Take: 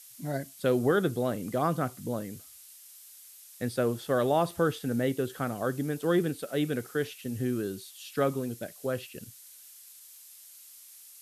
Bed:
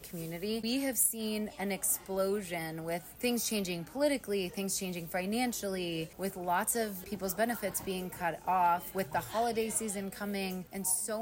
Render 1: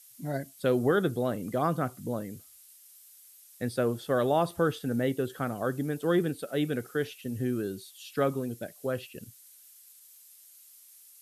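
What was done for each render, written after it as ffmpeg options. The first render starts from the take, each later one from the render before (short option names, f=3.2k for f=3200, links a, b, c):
-af "afftdn=nr=6:nf=-52"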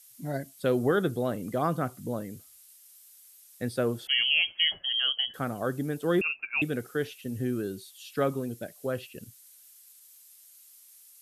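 -filter_complex "[0:a]asettb=1/sr,asplit=3[a][b][c];[a]atrim=end=4.074[d];[b]atrim=start=4.07:end=5.34,asetpts=PTS-STARTPTS,afade=t=in:d=0.004:c=qsin,afade=t=out:st=1.266:d=0.004:c=qsin,lowpass=f=2.9k:t=q:w=0.5098,lowpass=f=2.9k:t=q:w=0.6013,lowpass=f=2.9k:t=q:w=0.9,lowpass=f=2.9k:t=q:w=2.563,afreqshift=-3400[e];[c]atrim=start=5.336[f];[d][e]acrossfade=d=0.004:c1=hsin:c2=qsin[g];[g][f]acrossfade=d=0.004:c1=qsin:c2=hsin,asettb=1/sr,asplit=3[h][i][j];[h]atrim=end=6.214[k];[i]atrim=start=6.21:end=6.62,asetpts=PTS-STARTPTS,afade=t=in:d=0.004:c=qsin,afade=t=out:st=0.406:d=0.004:c=qsin,lowpass=f=2.5k:t=q:w=0.5098,lowpass=f=2.5k:t=q:w=0.6013,lowpass=f=2.5k:t=q:w=0.9,lowpass=f=2.5k:t=q:w=2.563,afreqshift=-2900[l];[j]atrim=start=6.616[m];[k][l]acrossfade=d=0.004:c1=hsin:c2=qsin[n];[n][m]acrossfade=d=0.004:c1=qsin:c2=hsin"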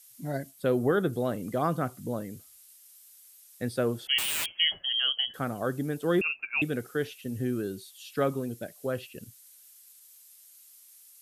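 -filter_complex "[0:a]asettb=1/sr,asplit=3[a][b][c];[a]atrim=end=0.514[d];[b]atrim=start=0.51:end=1.13,asetpts=PTS-STARTPTS,afade=t=in:d=0.004:c=qsin,afade=t=out:st=0.616:d=0.004:c=qsin,equalizer=f=5.1k:w=0.51:g=-4.5[e];[c]atrim=start=1.126[f];[d][e]acrossfade=d=0.004:c1=hsin:c2=qsin[g];[g][f]acrossfade=d=0.004:c1=qsin:c2=hsin,asettb=1/sr,asplit=3[h][i][j];[h]atrim=end=4.184[k];[i]atrim=start=4.18:end=4.59,asetpts=PTS-STARTPTS,afade=t=in:d=0.004:c=qsin,afade=t=out:st=0.406:d=0.004:c=qsin,aeval=exprs='(mod(17.8*val(0)+1,2)-1)/17.8':c=same[l];[j]atrim=start=4.586[m];[k][l]acrossfade=d=0.004:c1=hsin:c2=qsin[n];[n][m]acrossfade=d=0.004:c1=qsin:c2=hsin"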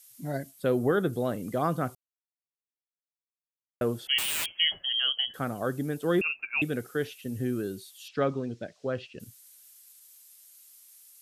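-filter_complex "[0:a]asettb=1/sr,asplit=3[a][b][c];[a]atrim=end=8.084[d];[b]atrim=start=8.08:end=9.2,asetpts=PTS-STARTPTS,afade=t=in:d=0.004:c=qsin,afade=t=out:st=1.116:d=0.004:c=qsin,lowpass=f=5.7k:w=0.5412,lowpass=f=5.7k:w=1.3066[e];[c]atrim=start=9.196[f];[d][e]acrossfade=d=0.004:c1=hsin:c2=qsin[g];[g][f]acrossfade=d=0.004:c1=qsin:c2=hsin,asplit=3[h][i][j];[h]atrim=end=1.95,asetpts=PTS-STARTPTS,afade=t=out:st=1.946:d=0.004:c=hsin[k];[i]atrim=start=1.95:end=3.81,asetpts=PTS-STARTPTS,volume=0[l];[j]atrim=start=3.81,asetpts=PTS-STARTPTS,afade=t=in:d=0.004:c=hsin[m];[k][l][m]concat=n=3:v=0:a=1"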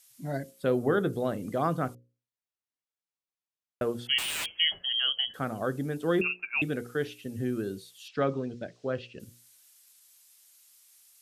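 -af "highshelf=f=11k:g=-11,bandreject=f=60:t=h:w=6,bandreject=f=120:t=h:w=6,bandreject=f=180:t=h:w=6,bandreject=f=240:t=h:w=6,bandreject=f=300:t=h:w=6,bandreject=f=360:t=h:w=6,bandreject=f=420:t=h:w=6,bandreject=f=480:t=h:w=6,bandreject=f=540:t=h:w=6"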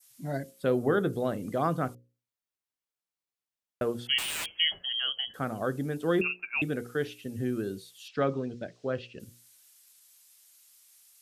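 -af "adynamicequalizer=threshold=0.0126:dfrequency=3100:dqfactor=1.1:tfrequency=3100:tqfactor=1.1:attack=5:release=100:ratio=0.375:range=2.5:mode=cutabove:tftype=bell"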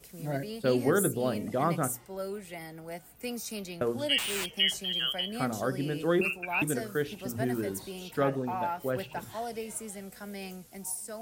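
-filter_complex "[1:a]volume=-5dB[a];[0:a][a]amix=inputs=2:normalize=0"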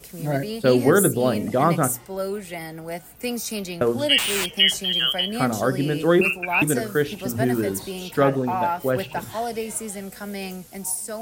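-af "volume=9dB"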